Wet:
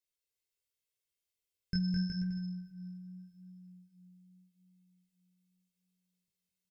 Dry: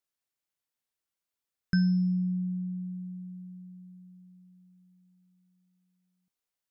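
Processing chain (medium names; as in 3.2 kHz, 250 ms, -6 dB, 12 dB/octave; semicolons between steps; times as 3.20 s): high-order bell 1 kHz -13 dB; comb 1.9 ms; bouncing-ball echo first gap 210 ms, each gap 0.75×, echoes 5; two-slope reverb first 0.31 s, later 3 s, from -18 dB, DRR 8.5 dB; chorus 0.83 Hz, delay 16 ms, depth 6.9 ms; trim -1 dB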